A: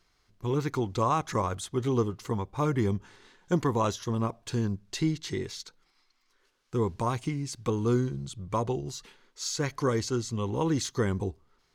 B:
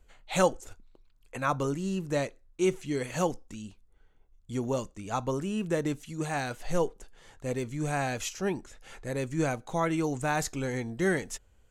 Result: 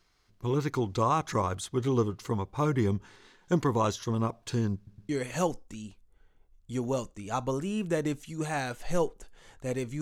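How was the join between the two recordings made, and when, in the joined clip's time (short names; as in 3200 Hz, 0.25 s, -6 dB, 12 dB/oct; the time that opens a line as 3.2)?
A
4.76 stutter in place 0.11 s, 3 plays
5.09 switch to B from 2.89 s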